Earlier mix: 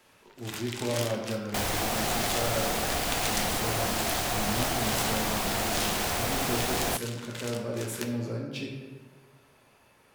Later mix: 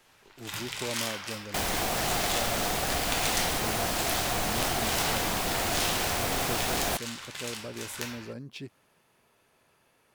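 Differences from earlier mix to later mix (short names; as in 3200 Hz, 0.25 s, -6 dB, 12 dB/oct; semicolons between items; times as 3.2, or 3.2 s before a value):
speech: send off; first sound: send +6.5 dB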